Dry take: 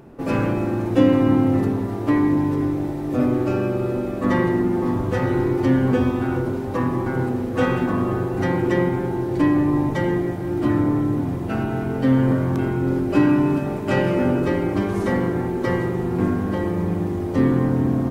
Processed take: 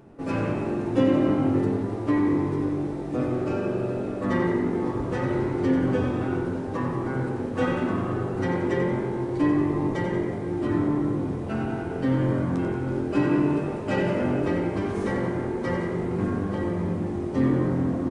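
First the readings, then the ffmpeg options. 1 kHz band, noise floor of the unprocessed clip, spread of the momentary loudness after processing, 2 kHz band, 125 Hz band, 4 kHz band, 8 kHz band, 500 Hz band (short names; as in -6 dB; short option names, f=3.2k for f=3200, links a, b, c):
-4.5 dB, -27 dBFS, 6 LU, -4.5 dB, -5.5 dB, -4.5 dB, n/a, -4.0 dB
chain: -filter_complex "[0:a]asplit=8[a][b][c][d][e][f][g][h];[b]adelay=91,afreqshift=45,volume=-9dB[i];[c]adelay=182,afreqshift=90,volume=-13.7dB[j];[d]adelay=273,afreqshift=135,volume=-18.5dB[k];[e]adelay=364,afreqshift=180,volume=-23.2dB[l];[f]adelay=455,afreqshift=225,volume=-27.9dB[m];[g]adelay=546,afreqshift=270,volume=-32.7dB[n];[h]adelay=637,afreqshift=315,volume=-37.4dB[o];[a][i][j][k][l][m][n][o]amix=inputs=8:normalize=0,aresample=22050,aresample=44100,flanger=delay=9.2:depth=6:regen=-44:speed=0.49:shape=triangular,volume=-1.5dB"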